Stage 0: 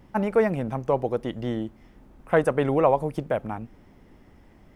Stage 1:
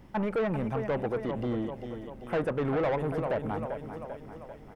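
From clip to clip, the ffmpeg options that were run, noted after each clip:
ffmpeg -i in.wav -filter_complex "[0:a]aecho=1:1:393|786|1179|1572|1965|2358:0.251|0.133|0.0706|0.0374|0.0198|0.0105,asoftclip=type=tanh:threshold=-24.5dB,acrossover=split=3000[link_01][link_02];[link_02]acompressor=threshold=-59dB:ratio=4:attack=1:release=60[link_03];[link_01][link_03]amix=inputs=2:normalize=0" out.wav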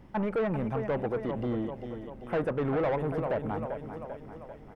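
ffmpeg -i in.wav -af "highshelf=frequency=3700:gain=-7" out.wav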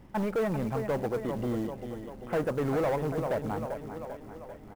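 ffmpeg -i in.wav -af "acrusher=bits=6:mode=log:mix=0:aa=0.000001,aecho=1:1:1189:0.0841" out.wav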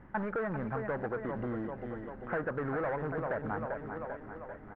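ffmpeg -i in.wav -af "acompressor=threshold=-31dB:ratio=6,lowpass=frequency=1600:width_type=q:width=3.4,volume=-2dB" out.wav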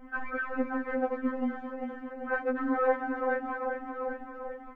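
ffmpeg -i in.wav -af "afftfilt=real='re*3.46*eq(mod(b,12),0)':imag='im*3.46*eq(mod(b,12),0)':win_size=2048:overlap=0.75,volume=7dB" out.wav

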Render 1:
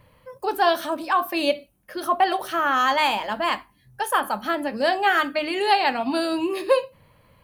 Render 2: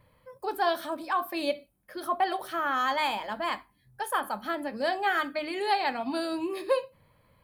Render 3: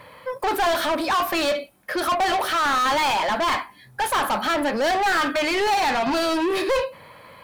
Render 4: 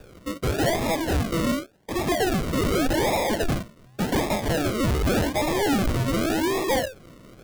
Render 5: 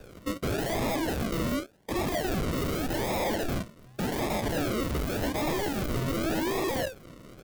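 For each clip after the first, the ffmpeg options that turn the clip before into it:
ffmpeg -i in.wav -af "equalizer=frequency=6100:width=6.6:gain=-6,bandreject=frequency=2800:width=10,volume=-7dB" out.wav
ffmpeg -i in.wav -filter_complex "[0:a]asplit=2[link_01][link_02];[link_02]highpass=frequency=720:poles=1,volume=30dB,asoftclip=type=tanh:threshold=-14.5dB[link_03];[link_01][link_03]amix=inputs=2:normalize=0,lowpass=frequency=4100:poles=1,volume=-6dB" out.wav
ffmpeg -i in.wav -af "acrusher=samples=42:mix=1:aa=0.000001:lfo=1:lforange=25.2:lforate=0.87,volume=-1.5dB" out.wav
ffmpeg -i in.wav -af "aresample=32000,aresample=44100,acrusher=bits=2:mode=log:mix=0:aa=0.000001,aeval=exprs='0.075*(abs(mod(val(0)/0.075+3,4)-2)-1)':channel_layout=same,volume=-1.5dB" out.wav

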